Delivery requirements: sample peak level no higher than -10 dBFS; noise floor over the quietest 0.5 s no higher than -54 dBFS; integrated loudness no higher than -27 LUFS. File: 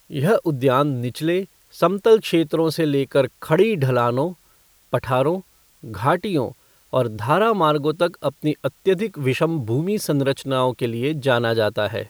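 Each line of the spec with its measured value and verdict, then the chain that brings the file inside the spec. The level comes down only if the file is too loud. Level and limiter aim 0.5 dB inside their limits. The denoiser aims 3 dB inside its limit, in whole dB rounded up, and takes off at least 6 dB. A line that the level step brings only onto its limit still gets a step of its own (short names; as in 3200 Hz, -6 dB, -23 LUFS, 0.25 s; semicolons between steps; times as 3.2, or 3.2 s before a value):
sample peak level -4.0 dBFS: fail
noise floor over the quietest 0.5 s -56 dBFS: OK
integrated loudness -20.5 LUFS: fail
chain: gain -7 dB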